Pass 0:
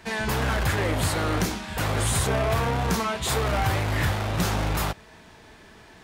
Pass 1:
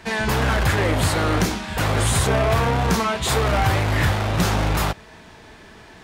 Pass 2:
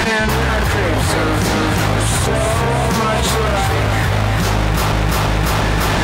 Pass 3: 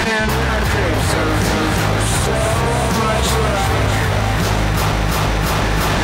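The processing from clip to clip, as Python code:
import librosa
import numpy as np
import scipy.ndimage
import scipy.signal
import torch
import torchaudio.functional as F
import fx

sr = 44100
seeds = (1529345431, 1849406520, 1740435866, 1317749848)

y1 = fx.high_shelf(x, sr, hz=9700.0, db=-5.0)
y1 = y1 * 10.0 ** (5.0 / 20.0)
y2 = fx.echo_feedback(y1, sr, ms=345, feedback_pct=47, wet_db=-6)
y2 = fx.env_flatten(y2, sr, amount_pct=100)
y2 = y2 * 10.0 ** (-1.0 / 20.0)
y3 = fx.dmg_buzz(y2, sr, base_hz=400.0, harmonics=15, level_db=-39.0, tilt_db=0, odd_only=False)
y3 = fx.echo_split(y3, sr, split_hz=330.0, low_ms=464, high_ms=648, feedback_pct=52, wet_db=-10.5)
y3 = y3 * 10.0 ** (-1.0 / 20.0)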